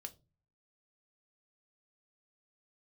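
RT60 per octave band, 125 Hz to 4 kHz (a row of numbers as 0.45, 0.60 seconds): 0.70, 0.50, 0.35, 0.25, 0.20, 0.20 seconds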